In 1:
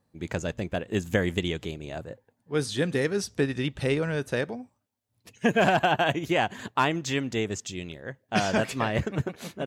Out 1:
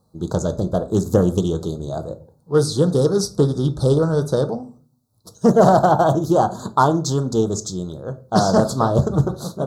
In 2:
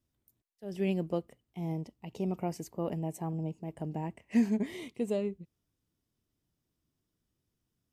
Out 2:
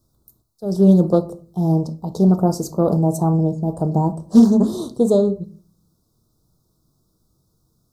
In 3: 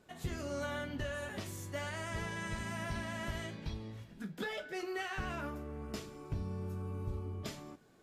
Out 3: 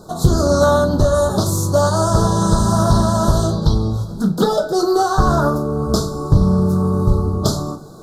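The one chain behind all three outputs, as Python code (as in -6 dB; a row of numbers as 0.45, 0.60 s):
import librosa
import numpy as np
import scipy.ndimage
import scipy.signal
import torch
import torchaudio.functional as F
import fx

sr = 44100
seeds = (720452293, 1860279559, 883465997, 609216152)

y = fx.dynamic_eq(x, sr, hz=3200.0, q=2.4, threshold_db=-47.0, ratio=4.0, max_db=-3)
y = scipy.signal.sosfilt(scipy.signal.ellip(3, 1.0, 50, [1300.0, 4000.0], 'bandstop', fs=sr, output='sos'), y)
y = fx.peak_eq(y, sr, hz=280.0, db=-6.5, octaves=0.27)
y = fx.room_shoebox(y, sr, seeds[0], volume_m3=320.0, walls='furnished', distance_m=0.57)
y = fx.doppler_dist(y, sr, depth_ms=0.22)
y = librosa.util.normalize(y) * 10.0 ** (-1.5 / 20.0)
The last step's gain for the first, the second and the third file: +10.0, +17.5, +26.0 dB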